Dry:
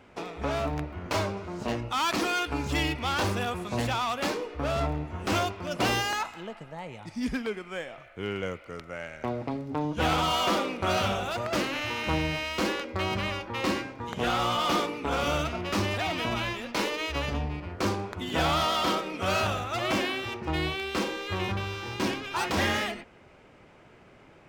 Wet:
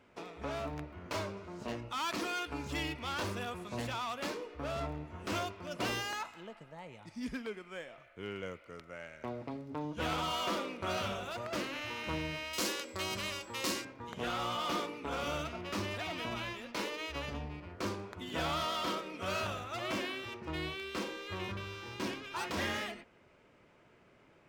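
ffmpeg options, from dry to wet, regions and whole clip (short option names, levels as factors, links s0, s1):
-filter_complex "[0:a]asettb=1/sr,asplit=3[s0][s1][s2];[s0]atrim=end=12.534[s3];[s1]atrim=start=12.53:end=13.85,asetpts=PTS-STARTPTS,afade=t=in:d=0.004:c=qsin,afade=t=out:st=1.316:d=0.004:c=qsin,bass=f=250:g=-3,treble=f=4000:g=15,aeval=exprs='val(0)+0.00282*sin(2*PI*7700*n/s)':c=same[s4];[s2]atrim=start=13.846[s5];[s3][s4]acrossfade=d=0.004:c1=hsin:c2=qsin[s6];[s6][s5]acrossfade=d=0.004:c1=qsin:c2=hsin,lowshelf=f=92:g=-5,bandreject=f=780:w=12,volume=0.376"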